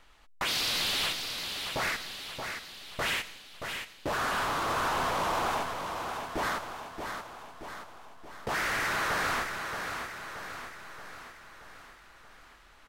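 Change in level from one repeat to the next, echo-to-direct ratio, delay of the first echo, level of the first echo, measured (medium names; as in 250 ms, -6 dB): -5.0 dB, -5.0 dB, 627 ms, -6.5 dB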